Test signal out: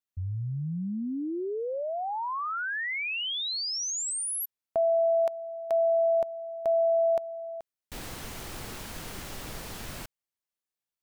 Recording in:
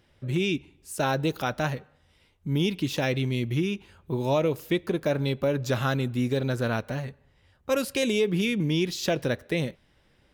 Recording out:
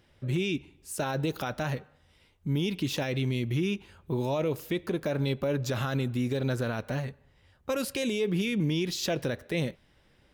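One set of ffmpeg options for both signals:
-af "alimiter=limit=0.0944:level=0:latency=1:release=41"

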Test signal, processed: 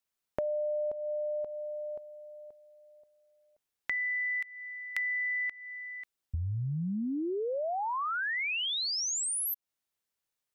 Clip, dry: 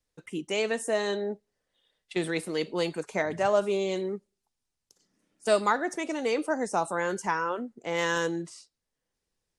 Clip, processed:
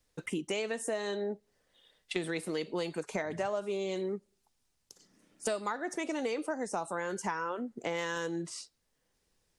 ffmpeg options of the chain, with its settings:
-af "acompressor=threshold=0.0112:ratio=6,volume=2.24"

